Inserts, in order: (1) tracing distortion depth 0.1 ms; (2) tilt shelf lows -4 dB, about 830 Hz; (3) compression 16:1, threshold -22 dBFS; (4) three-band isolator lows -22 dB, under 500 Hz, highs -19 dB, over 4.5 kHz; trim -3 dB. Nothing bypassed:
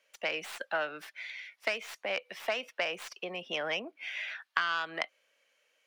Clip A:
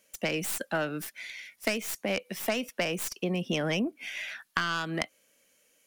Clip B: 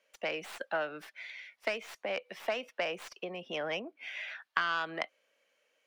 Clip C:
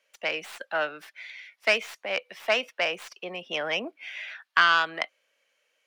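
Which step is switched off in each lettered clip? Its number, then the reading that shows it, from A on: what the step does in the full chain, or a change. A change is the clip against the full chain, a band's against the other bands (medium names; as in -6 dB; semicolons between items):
4, 125 Hz band +17.5 dB; 2, momentary loudness spread change +2 LU; 3, mean gain reduction 3.0 dB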